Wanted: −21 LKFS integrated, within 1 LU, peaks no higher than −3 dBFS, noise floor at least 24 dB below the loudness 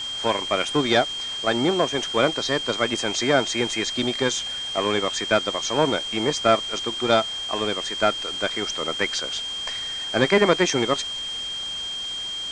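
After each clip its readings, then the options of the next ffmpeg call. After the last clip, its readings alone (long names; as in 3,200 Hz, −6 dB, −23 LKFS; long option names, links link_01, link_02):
interfering tone 3,200 Hz; level of the tone −28 dBFS; background noise floor −31 dBFS; target noise floor −47 dBFS; integrated loudness −23.0 LKFS; sample peak −3.0 dBFS; target loudness −21.0 LKFS
→ -af "bandreject=frequency=3200:width=30"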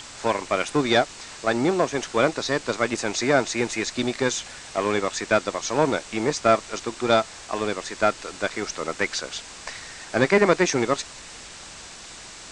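interfering tone none found; background noise floor −42 dBFS; target noise floor −48 dBFS
→ -af "afftdn=noise_reduction=6:noise_floor=-42"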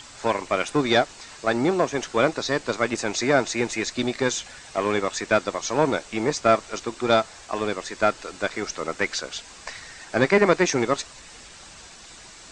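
background noise floor −45 dBFS; target noise floor −48 dBFS
→ -af "afftdn=noise_reduction=6:noise_floor=-45"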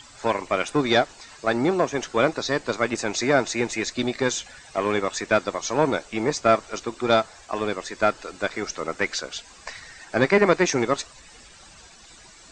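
background noise floor −49 dBFS; integrated loudness −24.0 LKFS; sample peak −3.0 dBFS; target loudness −21.0 LKFS
→ -af "volume=3dB,alimiter=limit=-3dB:level=0:latency=1"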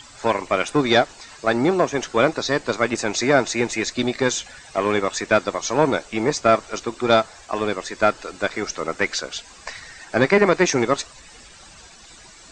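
integrated loudness −21.0 LKFS; sample peak −3.0 dBFS; background noise floor −46 dBFS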